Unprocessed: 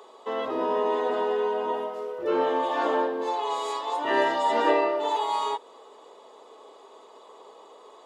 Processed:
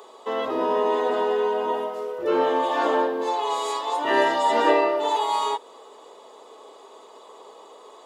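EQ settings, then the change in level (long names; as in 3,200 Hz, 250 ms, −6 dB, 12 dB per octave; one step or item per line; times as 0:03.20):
high-shelf EQ 6,900 Hz +6.5 dB
+3.0 dB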